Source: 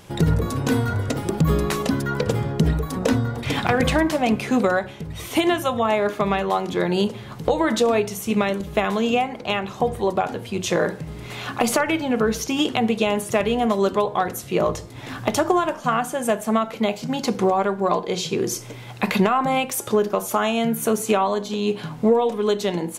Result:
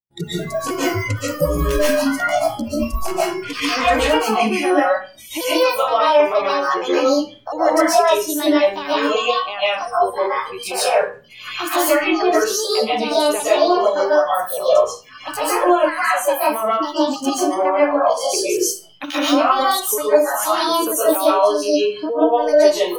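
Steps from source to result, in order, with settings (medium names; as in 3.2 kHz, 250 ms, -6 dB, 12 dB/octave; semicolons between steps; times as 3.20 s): pitch shift switched off and on +6.5 st, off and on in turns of 235 ms; spectral noise reduction 26 dB; bass shelf 250 Hz +6 dB; peak limiter -15 dBFS, peak gain reduction 8.5 dB; expander -45 dBFS; reverberation RT60 0.35 s, pre-delay 100 ms, DRR -9.5 dB; trim -1.5 dB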